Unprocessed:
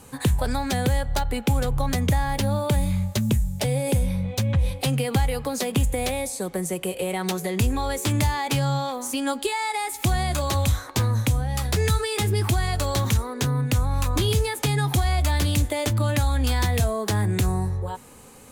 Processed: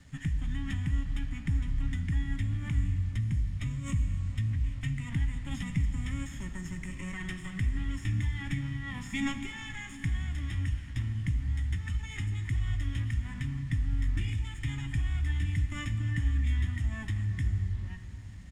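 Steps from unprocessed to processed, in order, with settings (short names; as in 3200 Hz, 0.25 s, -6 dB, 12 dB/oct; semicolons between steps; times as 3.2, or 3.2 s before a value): minimum comb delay 0.44 ms; passive tone stack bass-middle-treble 6-0-2; in parallel at -0.5 dB: compressor 8:1, threshold -44 dBFS, peak gain reduction 14.5 dB; on the sum: fixed phaser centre 1700 Hz, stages 6; small resonant body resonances 280/1700/2400 Hz, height 15 dB, ringing for 40 ms; formant shift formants -5 st; requantised 10-bit, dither none; air absorption 95 m; doubler 18 ms -14 dB; on a send at -8 dB: reverb RT60 4.0 s, pre-delay 32 ms; on the sum: gain +3.5 dB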